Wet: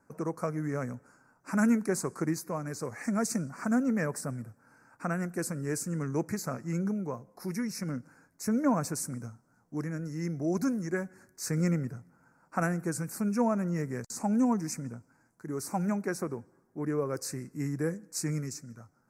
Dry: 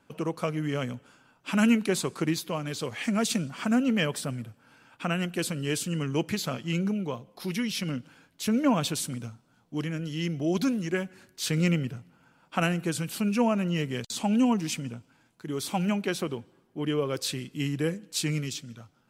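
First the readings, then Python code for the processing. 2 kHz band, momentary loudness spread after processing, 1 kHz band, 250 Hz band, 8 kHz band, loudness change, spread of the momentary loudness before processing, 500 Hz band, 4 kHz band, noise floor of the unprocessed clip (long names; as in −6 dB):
−5.5 dB, 12 LU, −2.5 dB, −3.0 dB, −2.5 dB, −3.5 dB, 12 LU, −3.0 dB, −14.0 dB, −65 dBFS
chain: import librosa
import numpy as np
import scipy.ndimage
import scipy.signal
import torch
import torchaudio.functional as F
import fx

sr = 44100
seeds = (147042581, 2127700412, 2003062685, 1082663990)

y = scipy.signal.sosfilt(scipy.signal.cheby1(2, 1.0, [1700.0, 5900.0], 'bandstop', fs=sr, output='sos'), x)
y = y * 10.0 ** (-2.0 / 20.0)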